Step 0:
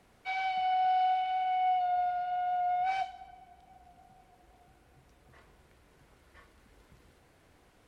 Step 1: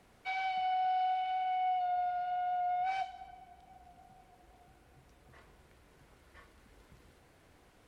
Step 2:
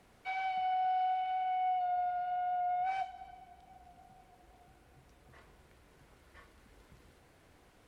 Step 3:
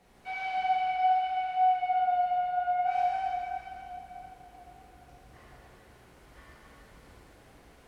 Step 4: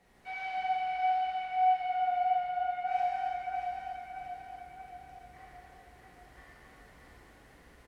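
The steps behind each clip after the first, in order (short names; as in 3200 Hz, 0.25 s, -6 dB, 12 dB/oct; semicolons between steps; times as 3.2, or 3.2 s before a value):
compressor 1.5:1, threshold -37 dBFS, peak gain reduction 4.5 dB
dynamic EQ 4300 Hz, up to -6 dB, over -59 dBFS, Q 0.91
plate-style reverb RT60 3.4 s, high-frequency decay 0.9×, DRR -9 dB; gain -3 dB
bell 1900 Hz +7.5 dB 0.22 oct; feedback echo 0.631 s, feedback 50%, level -6 dB; gain -4 dB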